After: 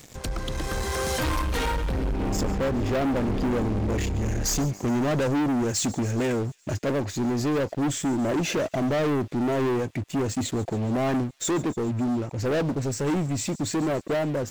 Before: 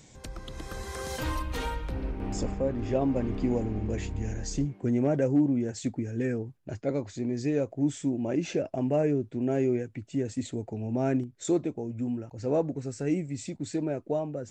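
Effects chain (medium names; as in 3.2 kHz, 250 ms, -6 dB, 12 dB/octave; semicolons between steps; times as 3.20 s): 4.45–6.85 s: treble shelf 3.3 kHz +9.5 dB; waveshaping leveller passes 5; feedback echo behind a high-pass 140 ms, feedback 65%, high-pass 4 kHz, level -17 dB; trim -6.5 dB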